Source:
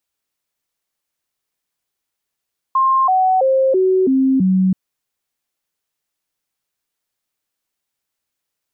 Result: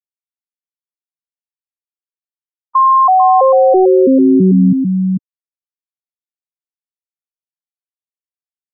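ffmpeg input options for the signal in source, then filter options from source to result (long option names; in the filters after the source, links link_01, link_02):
-f lavfi -i "aevalsrc='0.282*clip(min(mod(t,0.33),0.33-mod(t,0.33))/0.005,0,1)*sin(2*PI*1060*pow(2,-floor(t/0.33)/2)*mod(t,0.33))':duration=1.98:sample_rate=44100"
-filter_complex "[0:a]asplit=2[link_01][link_02];[link_02]aecho=0:1:445:0.501[link_03];[link_01][link_03]amix=inputs=2:normalize=0,acontrast=68,afftfilt=real='re*gte(hypot(re,im),0.355)':imag='im*gte(hypot(re,im),0.355)':win_size=1024:overlap=0.75"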